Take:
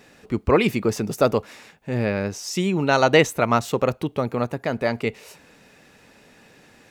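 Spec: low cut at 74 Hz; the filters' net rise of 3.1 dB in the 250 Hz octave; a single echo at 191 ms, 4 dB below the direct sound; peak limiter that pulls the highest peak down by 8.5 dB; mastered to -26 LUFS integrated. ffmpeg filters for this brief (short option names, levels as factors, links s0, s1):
-af "highpass=74,equalizer=f=250:t=o:g=4,alimiter=limit=0.299:level=0:latency=1,aecho=1:1:191:0.631,volume=0.668"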